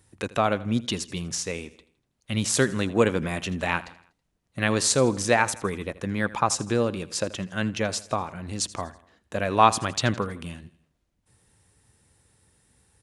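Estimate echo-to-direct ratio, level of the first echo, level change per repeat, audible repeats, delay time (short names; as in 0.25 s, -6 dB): -17.5 dB, -18.5 dB, -6.0 dB, 3, 81 ms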